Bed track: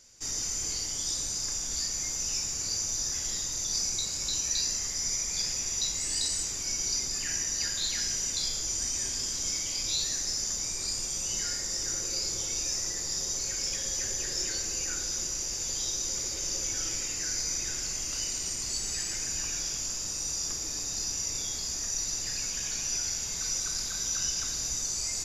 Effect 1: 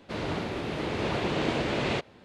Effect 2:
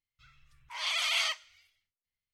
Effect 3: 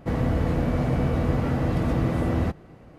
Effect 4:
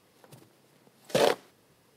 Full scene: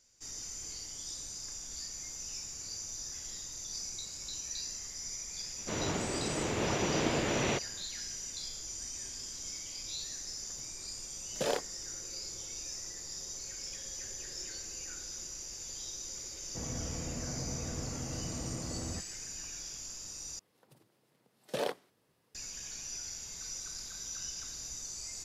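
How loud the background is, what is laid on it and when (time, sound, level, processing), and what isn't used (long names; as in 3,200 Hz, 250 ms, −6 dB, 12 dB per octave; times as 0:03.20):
bed track −10.5 dB
0:05.58: mix in 1 −3 dB
0:10.26: mix in 4 −9 dB
0:16.49: mix in 3 −16.5 dB
0:20.39: overwrite with 4 −10.5 dB
not used: 2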